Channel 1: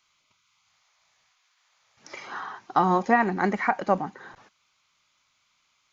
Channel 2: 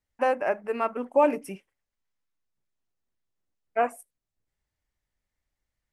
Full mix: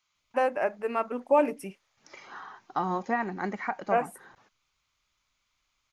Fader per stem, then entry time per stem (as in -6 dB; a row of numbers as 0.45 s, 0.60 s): -8.0 dB, -1.5 dB; 0.00 s, 0.15 s